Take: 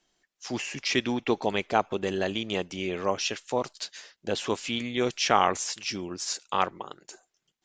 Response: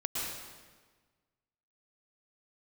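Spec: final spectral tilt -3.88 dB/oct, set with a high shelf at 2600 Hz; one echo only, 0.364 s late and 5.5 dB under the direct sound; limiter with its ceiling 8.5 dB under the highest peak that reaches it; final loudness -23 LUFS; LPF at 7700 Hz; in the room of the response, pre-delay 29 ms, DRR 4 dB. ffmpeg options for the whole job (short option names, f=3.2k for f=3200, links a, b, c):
-filter_complex "[0:a]lowpass=7.7k,highshelf=f=2.6k:g=-4,alimiter=limit=-15dB:level=0:latency=1,aecho=1:1:364:0.531,asplit=2[a][b];[1:a]atrim=start_sample=2205,adelay=29[c];[b][c]afir=irnorm=-1:irlink=0,volume=-9dB[d];[a][d]amix=inputs=2:normalize=0,volume=6.5dB"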